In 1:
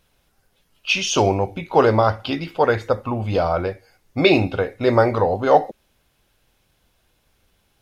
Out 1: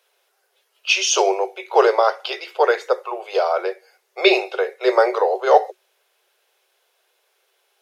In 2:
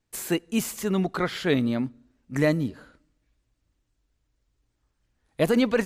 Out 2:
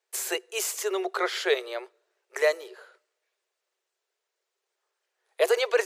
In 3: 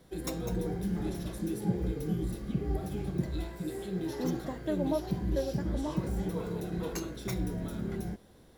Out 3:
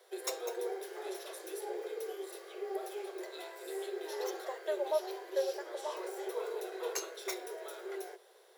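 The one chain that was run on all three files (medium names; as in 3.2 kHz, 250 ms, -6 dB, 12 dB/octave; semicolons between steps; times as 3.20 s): Chebyshev high-pass 370 Hz, order 8; dynamic bell 6.3 kHz, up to +5 dB, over -46 dBFS, Q 1.2; trim +1.5 dB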